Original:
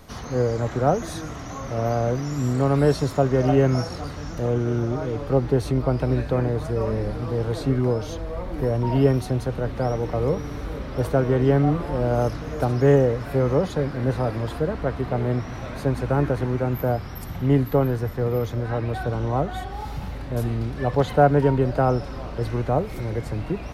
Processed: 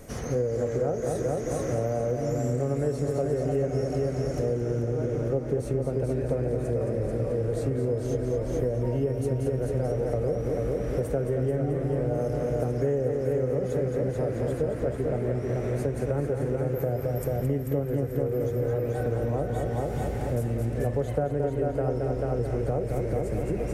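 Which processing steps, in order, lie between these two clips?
graphic EQ 125/500/1000/2000/4000/8000 Hz +3/+9/-9/+3/-11/+9 dB; on a send: multi-head echo 0.219 s, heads first and second, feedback 46%, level -6.5 dB; on the sum: compressor, threshold -24 dBFS, peak gain reduction 17 dB; de-hum 87.56 Hz, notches 36

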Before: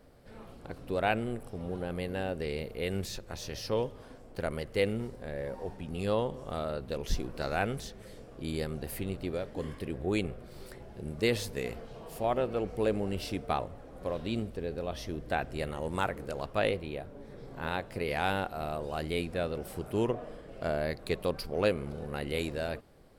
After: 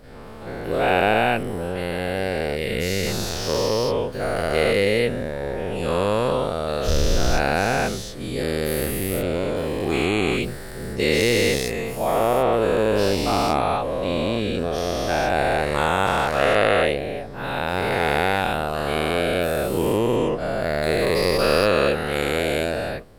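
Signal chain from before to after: spectral dilation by 0.48 s; gain +4 dB

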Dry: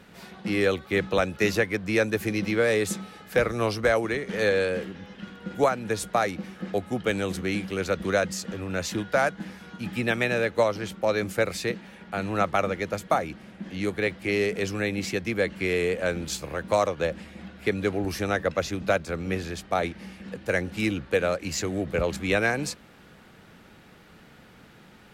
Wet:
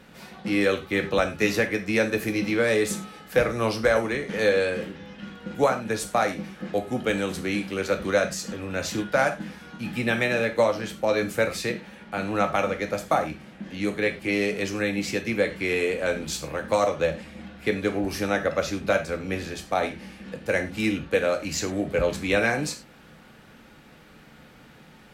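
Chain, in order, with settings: non-linear reverb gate 0.13 s falling, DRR 4.5 dB

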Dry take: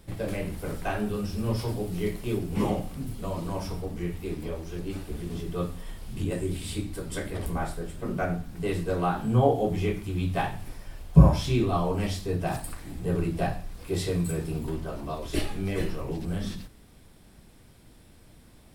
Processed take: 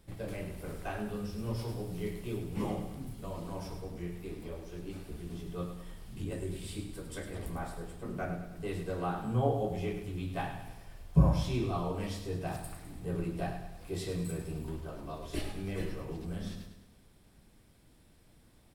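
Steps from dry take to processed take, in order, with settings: feedback echo 0.103 s, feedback 50%, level -9 dB; gain -8.5 dB

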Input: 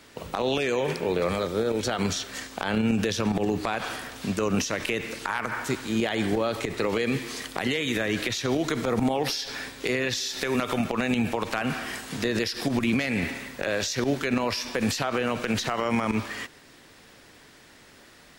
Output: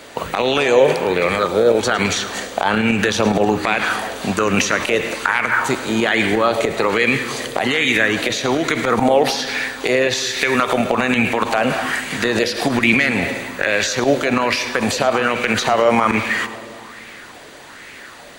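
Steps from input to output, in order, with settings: low shelf 240 Hz -6 dB; notch 5300 Hz, Q 8.5; split-band echo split 1300 Hz, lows 0.18 s, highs 0.108 s, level -14.5 dB; spring tank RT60 3 s, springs 43 ms, chirp 55 ms, DRR 16 dB; vocal rider 2 s; bell 13000 Hz -9 dB 0.2 oct; maximiser +15 dB; LFO bell 1.2 Hz 540–2300 Hz +9 dB; gain -6.5 dB

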